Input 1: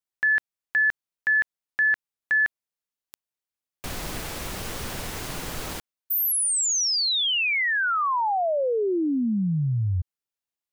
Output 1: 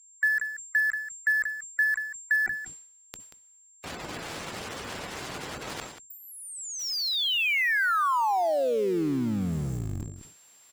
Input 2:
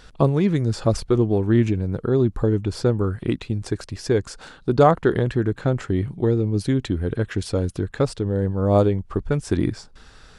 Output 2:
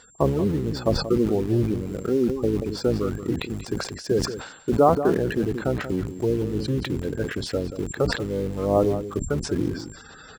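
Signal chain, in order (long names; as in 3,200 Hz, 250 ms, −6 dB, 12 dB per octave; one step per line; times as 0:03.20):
sub-octave generator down 1 octave, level −2 dB
gate on every frequency bin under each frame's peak −25 dB strong
high-pass filter 310 Hz 6 dB per octave
high-shelf EQ 8,800 Hz −6 dB
reversed playback
upward compression, threshold −32 dBFS
reversed playback
steady tone 7,400 Hz −50 dBFS
treble cut that deepens with the level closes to 1,200 Hz, closed at −17.5 dBFS
in parallel at −11.5 dB: bit reduction 5 bits
on the sum: single-tap delay 184 ms −12 dB
level that may fall only so fast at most 75 dB per second
level −2.5 dB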